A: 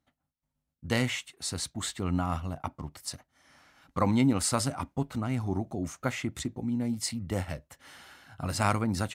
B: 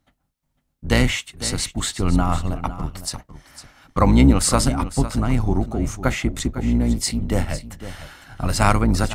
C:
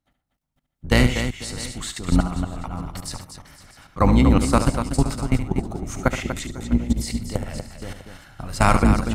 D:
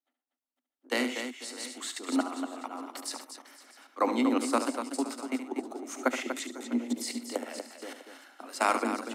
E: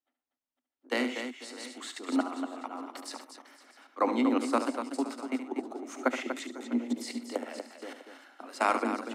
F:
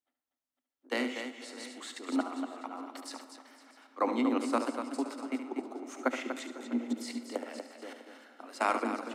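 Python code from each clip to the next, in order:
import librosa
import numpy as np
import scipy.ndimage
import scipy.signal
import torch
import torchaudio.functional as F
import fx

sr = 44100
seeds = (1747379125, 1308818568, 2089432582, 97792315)

y1 = fx.octave_divider(x, sr, octaves=2, level_db=0.0)
y1 = y1 + 10.0 ** (-13.5 / 20.0) * np.pad(y1, (int(504 * sr / 1000.0), 0))[:len(y1)]
y1 = y1 * librosa.db_to_amplitude(9.0)
y2 = fx.level_steps(y1, sr, step_db=17)
y2 = fx.echo_multitap(y2, sr, ms=(72, 122, 241, 650), db=(-10.0, -18.5, -8.5, -19.5))
y2 = y2 * librosa.db_to_amplitude(2.5)
y3 = scipy.signal.sosfilt(scipy.signal.butter(16, 240.0, 'highpass', fs=sr, output='sos'), y2)
y3 = fx.rider(y3, sr, range_db=5, speed_s=2.0)
y3 = y3 * librosa.db_to_amplitude(-8.0)
y4 = fx.high_shelf(y3, sr, hz=5700.0, db=-10.5)
y5 = fx.rev_freeverb(y4, sr, rt60_s=3.7, hf_ratio=0.7, predelay_ms=35, drr_db=14.0)
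y5 = y5 * librosa.db_to_amplitude(-2.5)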